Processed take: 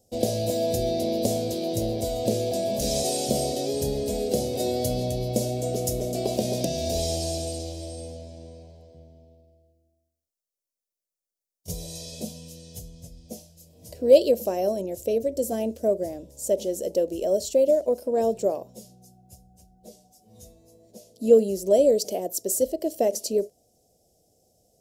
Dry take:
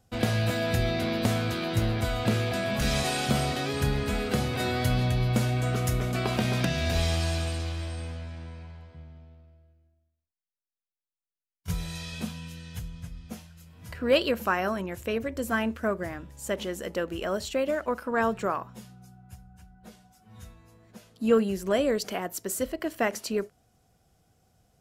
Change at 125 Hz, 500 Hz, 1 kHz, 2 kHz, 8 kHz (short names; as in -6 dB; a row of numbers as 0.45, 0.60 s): -5.5 dB, +7.0 dB, -2.0 dB, under -15 dB, +6.5 dB